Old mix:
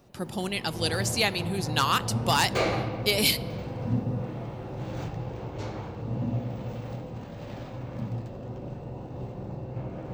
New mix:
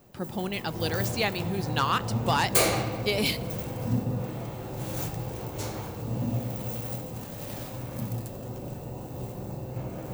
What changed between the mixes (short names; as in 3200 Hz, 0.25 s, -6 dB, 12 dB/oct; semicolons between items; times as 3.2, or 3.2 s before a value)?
speech: add high shelf 3800 Hz -10.5 dB; background: remove air absorption 190 m